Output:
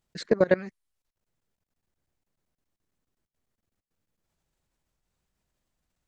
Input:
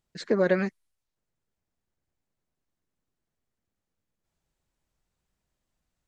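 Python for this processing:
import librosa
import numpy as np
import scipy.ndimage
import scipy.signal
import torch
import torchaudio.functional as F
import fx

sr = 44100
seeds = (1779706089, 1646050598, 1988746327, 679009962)

y = fx.level_steps(x, sr, step_db=21)
y = y * librosa.db_to_amplitude(4.5)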